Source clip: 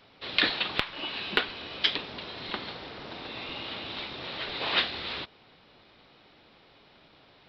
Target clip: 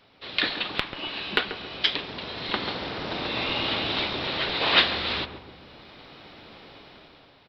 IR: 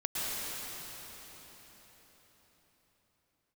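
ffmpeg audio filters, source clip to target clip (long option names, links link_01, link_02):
-filter_complex "[0:a]dynaudnorm=framelen=170:gausssize=9:maxgain=11.5dB,asplit=2[link_01][link_02];[link_02]adelay=137,lowpass=frequency=850:poles=1,volume=-7dB,asplit=2[link_03][link_04];[link_04]adelay=137,lowpass=frequency=850:poles=1,volume=0.54,asplit=2[link_05][link_06];[link_06]adelay=137,lowpass=frequency=850:poles=1,volume=0.54,asplit=2[link_07][link_08];[link_08]adelay=137,lowpass=frequency=850:poles=1,volume=0.54,asplit=2[link_09][link_10];[link_10]adelay=137,lowpass=frequency=850:poles=1,volume=0.54,asplit=2[link_11][link_12];[link_12]adelay=137,lowpass=frequency=850:poles=1,volume=0.54,asplit=2[link_13][link_14];[link_14]adelay=137,lowpass=frequency=850:poles=1,volume=0.54[link_15];[link_03][link_05][link_07][link_09][link_11][link_13][link_15]amix=inputs=7:normalize=0[link_16];[link_01][link_16]amix=inputs=2:normalize=0,volume=-1dB"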